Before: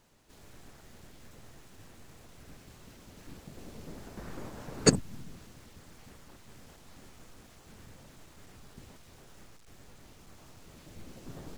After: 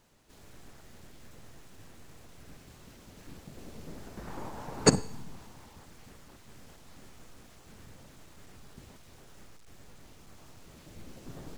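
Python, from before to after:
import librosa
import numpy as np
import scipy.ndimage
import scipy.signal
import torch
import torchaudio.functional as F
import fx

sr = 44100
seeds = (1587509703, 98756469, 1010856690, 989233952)

y = fx.peak_eq(x, sr, hz=890.0, db=9.5, octaves=0.63, at=(4.27, 5.85))
y = fx.rev_schroeder(y, sr, rt60_s=0.63, comb_ms=38, drr_db=17.5)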